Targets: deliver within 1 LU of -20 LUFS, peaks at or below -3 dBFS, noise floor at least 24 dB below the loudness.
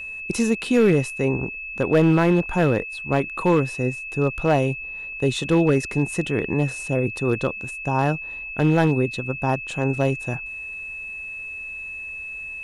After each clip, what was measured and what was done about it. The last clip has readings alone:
clipped samples 0.6%; clipping level -10.5 dBFS; steady tone 2.6 kHz; tone level -31 dBFS; loudness -23.0 LUFS; peak level -10.5 dBFS; loudness target -20.0 LUFS
-> clip repair -10.5 dBFS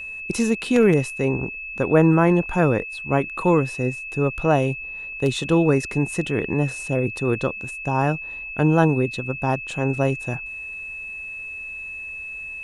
clipped samples 0.0%; steady tone 2.6 kHz; tone level -31 dBFS
-> band-stop 2.6 kHz, Q 30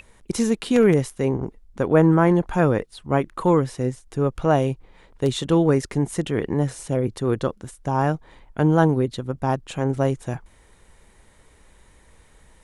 steady tone not found; loudness -22.0 LUFS; peak level -3.5 dBFS; loudness target -20.0 LUFS
-> trim +2 dB; peak limiter -3 dBFS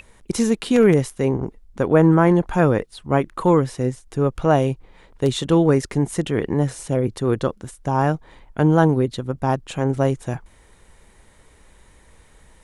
loudness -20.0 LUFS; peak level -3.0 dBFS; noise floor -53 dBFS

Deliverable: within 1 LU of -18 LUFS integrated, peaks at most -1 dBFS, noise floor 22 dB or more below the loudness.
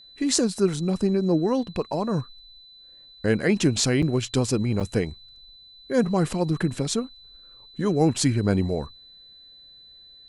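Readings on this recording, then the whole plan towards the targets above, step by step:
dropouts 2; longest dropout 6.1 ms; steady tone 4 kHz; tone level -47 dBFS; loudness -24.0 LUFS; peak level -2.5 dBFS; loudness target -18.0 LUFS
-> interpolate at 4.02/4.80 s, 6.1 ms; band-stop 4 kHz, Q 30; trim +6 dB; peak limiter -1 dBFS

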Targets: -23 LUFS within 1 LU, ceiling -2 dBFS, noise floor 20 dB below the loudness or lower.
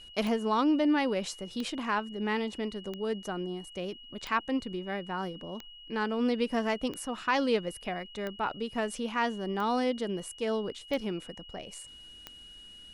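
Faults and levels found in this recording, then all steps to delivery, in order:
clicks found 10; steady tone 2.9 kHz; tone level -48 dBFS; loudness -32.0 LUFS; peak level -15.0 dBFS; loudness target -23.0 LUFS
-> de-click; band-stop 2.9 kHz, Q 30; trim +9 dB

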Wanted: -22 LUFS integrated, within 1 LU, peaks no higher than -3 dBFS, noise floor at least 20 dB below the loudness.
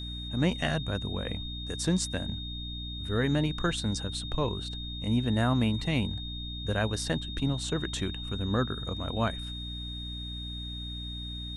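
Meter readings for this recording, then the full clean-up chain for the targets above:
hum 60 Hz; highest harmonic 300 Hz; hum level -36 dBFS; steady tone 3.7 kHz; tone level -39 dBFS; loudness -31.5 LUFS; peak level -13.0 dBFS; loudness target -22.0 LUFS
-> hum notches 60/120/180/240/300 Hz; band-stop 3.7 kHz, Q 30; trim +9.5 dB

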